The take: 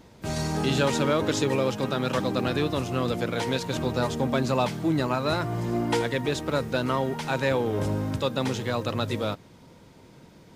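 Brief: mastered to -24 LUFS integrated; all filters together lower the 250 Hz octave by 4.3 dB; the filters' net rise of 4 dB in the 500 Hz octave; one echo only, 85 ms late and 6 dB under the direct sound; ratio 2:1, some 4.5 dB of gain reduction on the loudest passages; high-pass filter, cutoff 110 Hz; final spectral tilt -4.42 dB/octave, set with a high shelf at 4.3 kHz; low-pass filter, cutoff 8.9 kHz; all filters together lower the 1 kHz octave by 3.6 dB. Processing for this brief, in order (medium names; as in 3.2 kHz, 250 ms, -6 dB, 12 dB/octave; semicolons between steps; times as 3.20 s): high-pass 110 Hz; low-pass 8.9 kHz; peaking EQ 250 Hz -8 dB; peaking EQ 500 Hz +8.5 dB; peaking EQ 1 kHz -8 dB; treble shelf 4.3 kHz +8 dB; compression 2:1, threshold -26 dBFS; delay 85 ms -6 dB; trim +4 dB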